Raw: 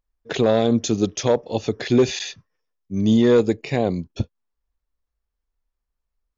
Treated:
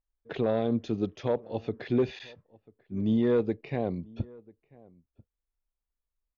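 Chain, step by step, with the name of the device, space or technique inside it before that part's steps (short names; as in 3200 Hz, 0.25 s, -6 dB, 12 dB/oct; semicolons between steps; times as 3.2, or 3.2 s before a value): shout across a valley (air absorption 330 m; outdoor echo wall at 170 m, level -24 dB); gain -8.5 dB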